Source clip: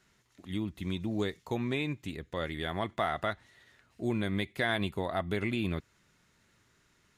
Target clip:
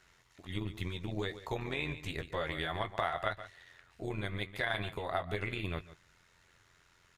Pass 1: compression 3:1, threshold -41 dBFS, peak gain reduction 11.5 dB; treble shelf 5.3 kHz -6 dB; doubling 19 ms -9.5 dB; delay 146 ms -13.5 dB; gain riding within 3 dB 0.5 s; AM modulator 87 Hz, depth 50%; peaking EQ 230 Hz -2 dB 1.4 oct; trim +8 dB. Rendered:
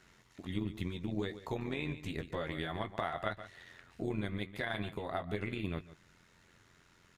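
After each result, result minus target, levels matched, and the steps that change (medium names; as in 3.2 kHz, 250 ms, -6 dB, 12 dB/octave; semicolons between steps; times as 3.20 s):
250 Hz band +5.0 dB; compression: peak gain reduction +4.5 dB
change: peaking EQ 230 Hz -12 dB 1.4 oct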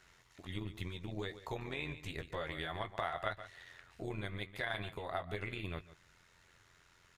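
compression: peak gain reduction +4.5 dB
change: compression 3:1, threshold -34 dBFS, peak gain reduction 7 dB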